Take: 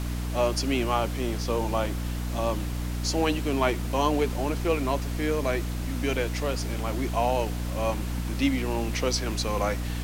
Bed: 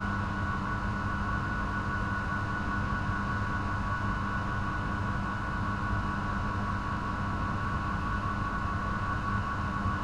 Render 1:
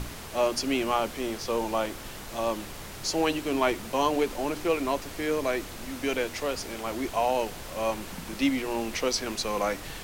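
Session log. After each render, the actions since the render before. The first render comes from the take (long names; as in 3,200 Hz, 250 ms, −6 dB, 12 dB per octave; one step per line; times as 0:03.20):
mains-hum notches 60/120/180/240/300 Hz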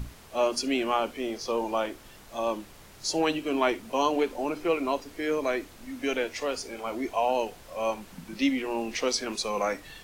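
noise reduction from a noise print 10 dB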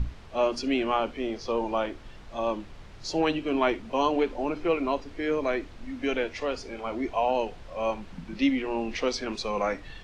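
low-pass filter 4,200 Hz 12 dB per octave
low-shelf EQ 110 Hz +11 dB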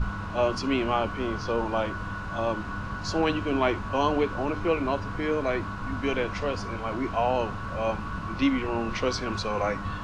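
mix in bed −3 dB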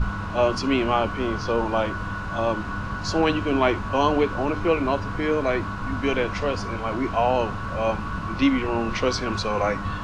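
level +4 dB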